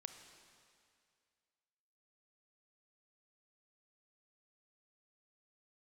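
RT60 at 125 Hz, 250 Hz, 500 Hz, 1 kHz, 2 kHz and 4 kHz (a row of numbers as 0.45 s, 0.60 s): 2.1 s, 2.2 s, 2.3 s, 2.2 s, 2.2 s, 2.2 s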